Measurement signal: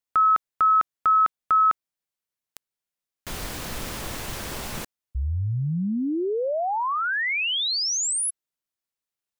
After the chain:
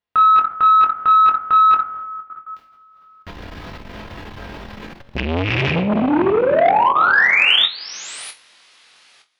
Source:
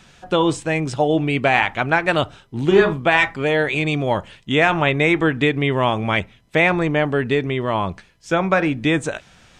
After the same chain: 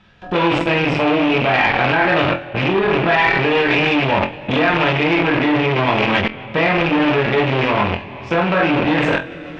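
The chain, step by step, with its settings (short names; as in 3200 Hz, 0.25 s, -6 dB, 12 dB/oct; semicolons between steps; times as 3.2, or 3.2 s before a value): rattling part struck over -23 dBFS, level -12 dBFS; high shelf 3400 Hz +4.5 dB; two-slope reverb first 0.39 s, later 3.2 s, from -20 dB, DRR -2.5 dB; in parallel at +2 dB: limiter -7 dBFS; on the sum: air absorption 330 m; level quantiser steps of 19 dB; on a send: flutter echo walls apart 4 m, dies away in 0.2 s; on the sum: core saturation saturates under 1100 Hz; gain +5 dB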